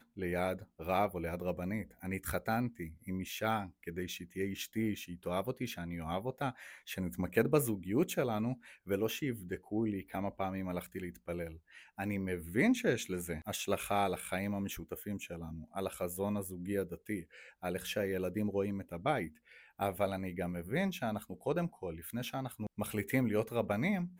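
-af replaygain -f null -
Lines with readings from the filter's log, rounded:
track_gain = +16.2 dB
track_peak = 0.143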